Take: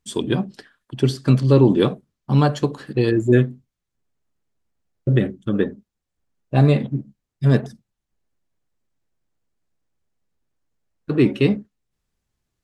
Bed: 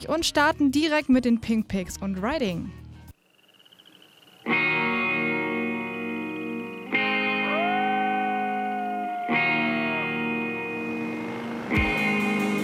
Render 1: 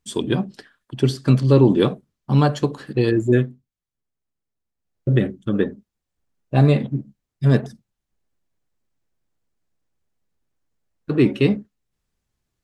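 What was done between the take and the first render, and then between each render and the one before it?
3.11–5.23 dip -8.5 dB, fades 0.47 s equal-power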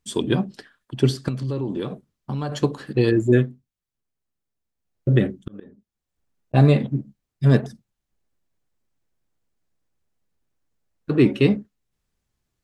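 1.28–2.52 compressor 5:1, threshold -24 dBFS; 5.09–6.54 auto swell 0.592 s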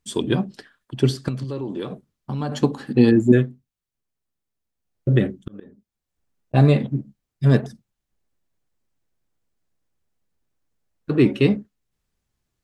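1.44–1.89 low shelf 140 Hz -9.5 dB; 2.4–3.32 small resonant body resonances 240/810 Hz, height 13 dB, ringing for 95 ms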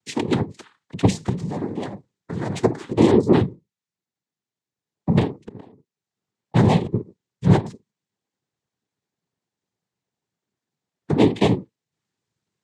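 noise vocoder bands 6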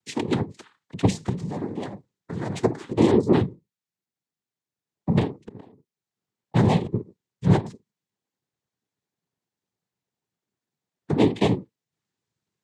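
gain -3 dB

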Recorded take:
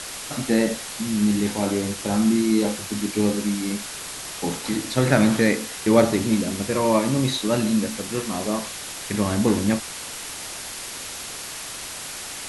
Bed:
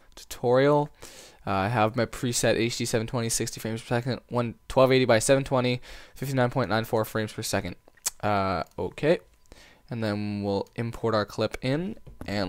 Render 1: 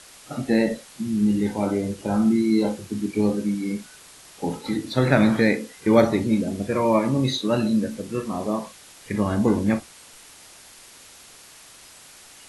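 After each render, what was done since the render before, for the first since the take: noise print and reduce 13 dB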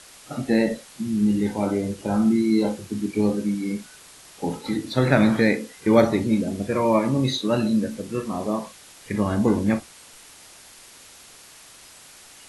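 nothing audible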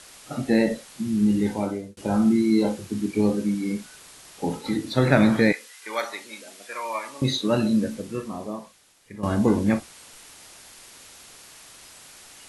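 1.52–1.97 fade out; 5.52–7.22 HPF 1200 Hz; 7.88–9.23 fade out quadratic, to -14 dB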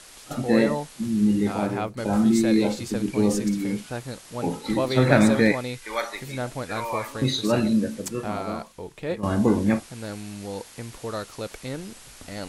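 add bed -6.5 dB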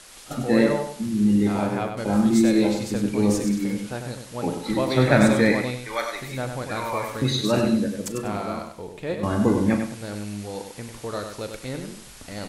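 doubler 39 ms -14 dB; feedback echo 97 ms, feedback 26%, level -6.5 dB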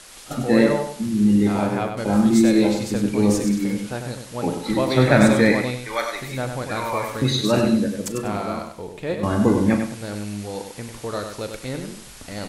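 gain +2.5 dB; limiter -1 dBFS, peak gain reduction 1 dB

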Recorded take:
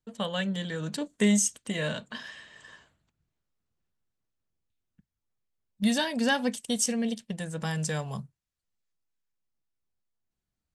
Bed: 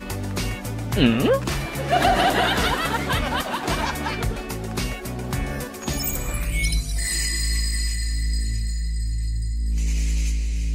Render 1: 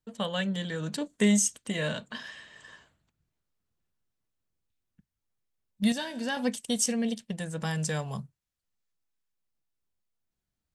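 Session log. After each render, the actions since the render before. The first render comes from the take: 5.92–6.37 resonator 64 Hz, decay 1 s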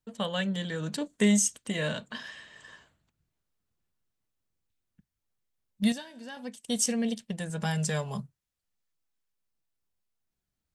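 5.88–6.75 dip -11 dB, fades 0.15 s; 7.49–8.21 comb 4.9 ms, depth 52%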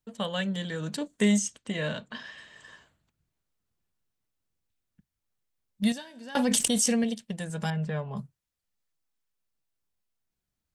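1.38–2.38 air absorption 70 m; 6.35–7.04 fast leveller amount 100%; 7.7–8.17 air absorption 490 m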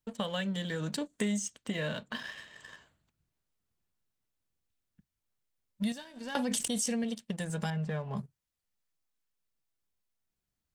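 sample leveller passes 1; compressor 3:1, threshold -33 dBFS, peak gain reduction 13 dB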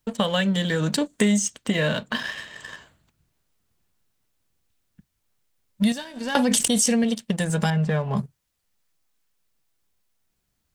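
gain +11.5 dB

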